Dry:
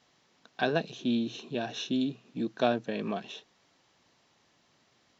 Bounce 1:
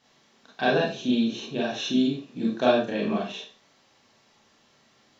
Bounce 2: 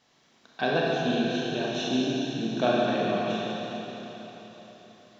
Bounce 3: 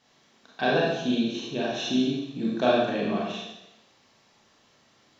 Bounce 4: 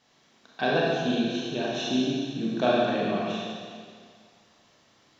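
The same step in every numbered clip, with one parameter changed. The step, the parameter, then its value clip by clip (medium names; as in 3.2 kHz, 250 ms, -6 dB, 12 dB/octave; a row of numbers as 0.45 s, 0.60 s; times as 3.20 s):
Schroeder reverb, RT60: 0.34 s, 4.1 s, 0.91 s, 2 s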